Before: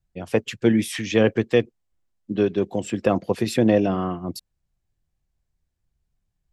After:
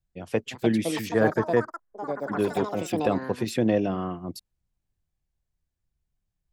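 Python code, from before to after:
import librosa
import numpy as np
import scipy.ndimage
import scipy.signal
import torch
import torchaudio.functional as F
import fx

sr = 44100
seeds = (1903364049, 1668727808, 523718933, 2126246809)

y = fx.echo_pitch(x, sr, ms=399, semitones=6, count=3, db_per_echo=-6.0)
y = fx.high_shelf_res(y, sr, hz=2100.0, db=-9.0, q=3.0, at=(1.09, 2.39))
y = y * 10.0 ** (-5.0 / 20.0)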